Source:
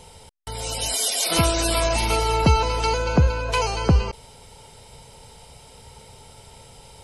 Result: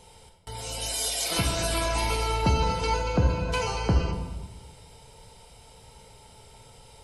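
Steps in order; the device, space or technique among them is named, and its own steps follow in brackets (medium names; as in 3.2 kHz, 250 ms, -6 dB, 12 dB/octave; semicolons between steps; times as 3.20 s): bathroom (reverberation RT60 1.2 s, pre-delay 8 ms, DRR 1.5 dB); trim -7 dB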